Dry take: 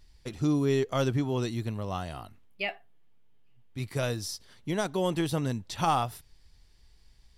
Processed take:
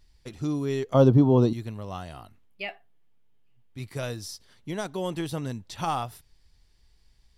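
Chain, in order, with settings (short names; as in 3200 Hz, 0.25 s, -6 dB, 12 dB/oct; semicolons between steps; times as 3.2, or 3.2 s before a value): 0.94–1.53 graphic EQ 125/250/500/1000/2000/4000/8000 Hz +10/+10/+10/+10/-11/+4/-9 dB; gain -2.5 dB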